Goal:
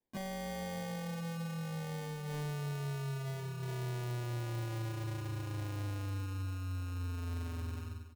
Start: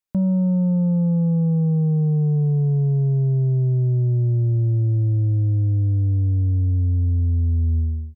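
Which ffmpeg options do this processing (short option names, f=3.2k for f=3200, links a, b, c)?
-filter_complex "[0:a]asplit=2[a][b];[b]asetrate=55563,aresample=44100,atempo=0.793701,volume=-18dB[c];[a][c]amix=inputs=2:normalize=0,flanger=delay=19:depth=4.5:speed=0.26,alimiter=limit=-22dB:level=0:latency=1:release=472,highpass=120,equalizer=f=190:t=o:w=1:g=-10.5,acrusher=samples=33:mix=1:aa=0.000001,asoftclip=type=hard:threshold=-38dB,aecho=1:1:322:0.15,volume=1dB"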